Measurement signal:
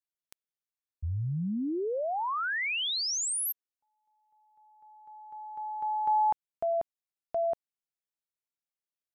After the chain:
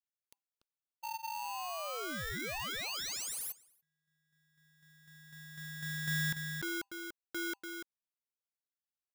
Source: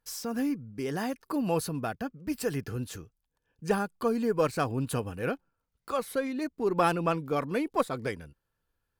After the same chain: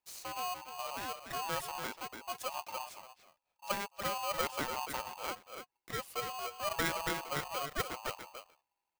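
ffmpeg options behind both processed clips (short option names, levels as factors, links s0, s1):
-filter_complex "[0:a]asplit=2[s0][s1];[s1]adelay=290,highpass=300,lowpass=3400,asoftclip=type=hard:threshold=0.1,volume=0.501[s2];[s0][s2]amix=inputs=2:normalize=0,afreqshift=-110,aeval=exprs='val(0)*sgn(sin(2*PI*900*n/s))':c=same,volume=0.355"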